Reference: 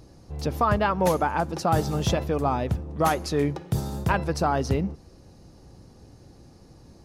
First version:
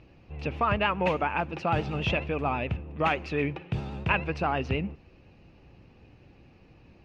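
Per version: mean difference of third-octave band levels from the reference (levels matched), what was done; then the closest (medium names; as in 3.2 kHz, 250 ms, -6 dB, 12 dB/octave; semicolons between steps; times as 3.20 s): 5.0 dB: vibrato 9.5 Hz 58 cents; resonant low-pass 2.6 kHz, resonance Q 7.1; trim -5 dB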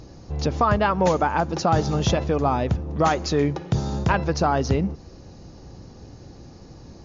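3.5 dB: in parallel at +1.5 dB: compression, threshold -30 dBFS, peak gain reduction 13 dB; on the sum: brick-wall FIR low-pass 7.2 kHz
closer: second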